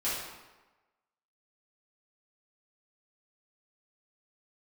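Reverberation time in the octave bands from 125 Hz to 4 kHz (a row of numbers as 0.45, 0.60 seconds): 1.0, 1.1, 1.1, 1.2, 1.0, 0.85 seconds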